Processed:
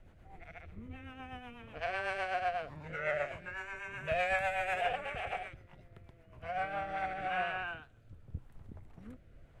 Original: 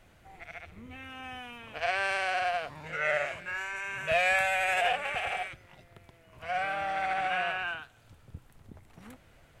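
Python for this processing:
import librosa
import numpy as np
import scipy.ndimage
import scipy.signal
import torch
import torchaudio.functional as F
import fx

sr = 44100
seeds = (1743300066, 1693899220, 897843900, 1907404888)

y = fx.low_shelf(x, sr, hz=78.0, db=8.0)
y = fx.rotary_switch(y, sr, hz=8.0, then_hz=0.85, switch_at_s=6.41)
y = fx.high_shelf(y, sr, hz=2200.0, db=-11.5)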